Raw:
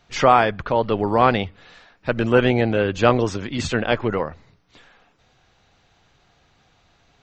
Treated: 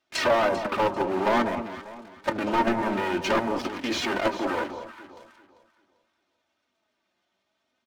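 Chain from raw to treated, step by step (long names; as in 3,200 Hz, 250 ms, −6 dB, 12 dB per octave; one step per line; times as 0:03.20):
lower of the sound and its delayed copy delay 3 ms
double-tracking delay 19 ms −13.5 dB
output level in coarse steps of 11 dB
high-pass filter 190 Hz 12 dB per octave
treble cut that deepens with the level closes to 1,500 Hz, closed at −24 dBFS
leveller curve on the samples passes 3
flanger 0.53 Hz, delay 2.3 ms, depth 3 ms, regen +58%
delay that swaps between a low-pass and a high-pass 181 ms, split 1,200 Hz, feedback 53%, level −8 dB
wrong playback speed 48 kHz file played as 44.1 kHz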